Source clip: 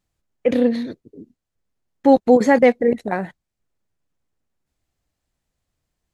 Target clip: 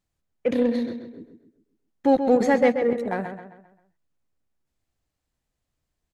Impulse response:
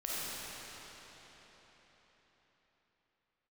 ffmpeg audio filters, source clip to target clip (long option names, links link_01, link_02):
-filter_complex "[0:a]asplit=2[link_01][link_02];[link_02]asoftclip=type=tanh:threshold=-18dB,volume=-7.5dB[link_03];[link_01][link_03]amix=inputs=2:normalize=0,asplit=2[link_04][link_05];[link_05]adelay=132,lowpass=frequency=4100:poles=1,volume=-8dB,asplit=2[link_06][link_07];[link_07]adelay=132,lowpass=frequency=4100:poles=1,volume=0.43,asplit=2[link_08][link_09];[link_09]adelay=132,lowpass=frequency=4100:poles=1,volume=0.43,asplit=2[link_10][link_11];[link_11]adelay=132,lowpass=frequency=4100:poles=1,volume=0.43,asplit=2[link_12][link_13];[link_13]adelay=132,lowpass=frequency=4100:poles=1,volume=0.43[link_14];[link_04][link_06][link_08][link_10][link_12][link_14]amix=inputs=6:normalize=0,volume=-7dB"